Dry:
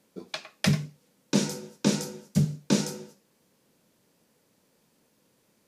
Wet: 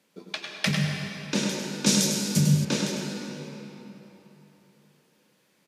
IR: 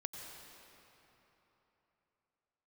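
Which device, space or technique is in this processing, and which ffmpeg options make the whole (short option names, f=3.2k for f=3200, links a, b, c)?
PA in a hall: -filter_complex "[0:a]highpass=120,equalizer=f=2.5k:t=o:w=2:g=7,aecho=1:1:101:0.422[a];[1:a]atrim=start_sample=2205[b];[a][b]afir=irnorm=-1:irlink=0,asettb=1/sr,asplit=3[c][d][e];[c]atrim=end=1.864[f];[d]atrim=start=1.86:end=2.65,asetpts=PTS-STARTPTS,afade=t=in:d=0.004:c=qsin,afade=t=out:st=0.786:d=0.004:c=qsin,bass=f=250:g=6,treble=f=4k:g=13[g];[e]atrim=start=2.646[h];[f][g]acrossfade=d=0.004:c1=hsin:c2=qsin[i];[i][h]acrossfade=d=0.004:c1=qsin:c2=hsin"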